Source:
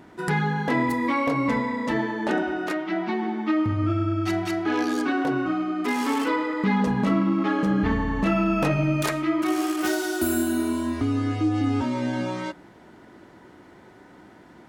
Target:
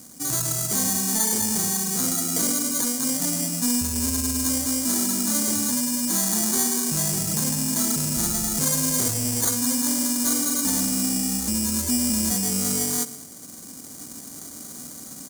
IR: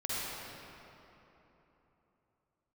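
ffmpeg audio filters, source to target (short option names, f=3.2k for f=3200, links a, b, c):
-filter_complex "[0:a]highpass=55,lowshelf=f=80:g=2.5,asplit=2[a][b];[b]adelay=110,lowpass=f=4.6k:p=1,volume=-18dB,asplit=2[c][d];[d]adelay=110,lowpass=f=4.6k:p=1,volume=0.47,asplit=2[e][f];[f]adelay=110,lowpass=f=4.6k:p=1,volume=0.47,asplit=2[g][h];[h]adelay=110,lowpass=f=4.6k:p=1,volume=0.47[i];[a][c][e][g][i]amix=inputs=5:normalize=0,asetrate=36028,aresample=44100,atempo=1.22405,acrusher=samples=16:mix=1:aa=0.000001,asoftclip=type=tanh:threshold=-23dB,aexciter=amount=3.9:drive=9.9:freq=5.5k,asetrate=42336,aresample=44100,equalizer=f=250:t=o:w=1:g=6,equalizer=f=4k:t=o:w=1:g=6,equalizer=f=8k:t=o:w=1:g=7,dynaudnorm=f=280:g=5:m=7dB,volume=-6.5dB"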